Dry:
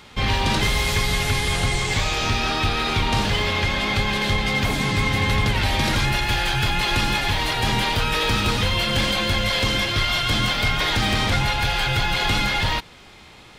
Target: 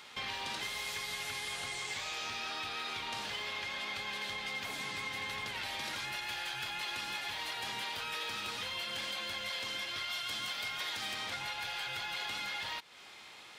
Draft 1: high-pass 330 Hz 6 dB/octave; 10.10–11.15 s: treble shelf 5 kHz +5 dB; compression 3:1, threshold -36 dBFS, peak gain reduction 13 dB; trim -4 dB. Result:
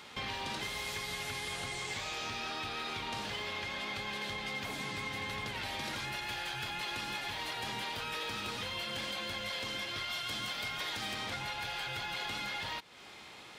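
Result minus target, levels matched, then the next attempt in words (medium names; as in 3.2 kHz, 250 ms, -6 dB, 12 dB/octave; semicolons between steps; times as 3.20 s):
250 Hz band +6.5 dB
high-pass 950 Hz 6 dB/octave; 10.10–11.15 s: treble shelf 5 kHz +5 dB; compression 3:1, threshold -36 dBFS, peak gain reduction 12.5 dB; trim -4 dB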